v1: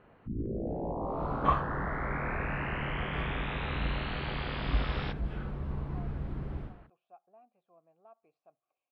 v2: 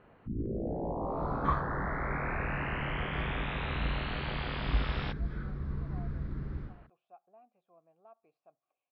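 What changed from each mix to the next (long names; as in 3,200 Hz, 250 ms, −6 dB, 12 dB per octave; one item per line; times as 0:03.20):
second sound: add phaser with its sweep stopped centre 2,800 Hz, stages 6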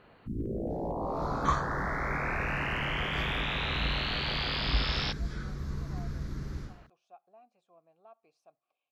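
master: remove high-frequency loss of the air 460 metres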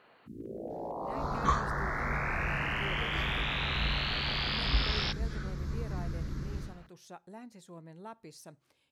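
speech: remove formant filter a
first sound: add high-pass filter 590 Hz 6 dB per octave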